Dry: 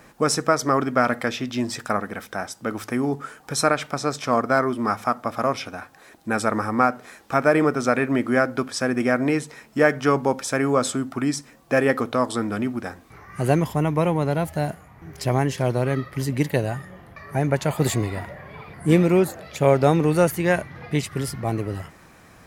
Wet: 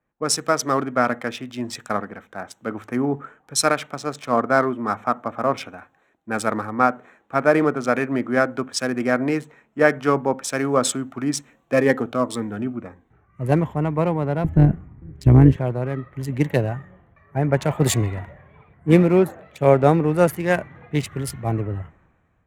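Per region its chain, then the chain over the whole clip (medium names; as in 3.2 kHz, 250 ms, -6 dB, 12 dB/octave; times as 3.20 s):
11.73–13.52 s: short-mantissa float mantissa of 6-bit + Shepard-style phaser falling 1.8 Hz
14.44–15.56 s: resonant low shelf 400 Hz +10.5 dB, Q 1.5 + AM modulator 190 Hz, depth 30%
whole clip: local Wiener filter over 9 samples; level rider gain up to 5.5 dB; three bands expanded up and down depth 70%; trim -2.5 dB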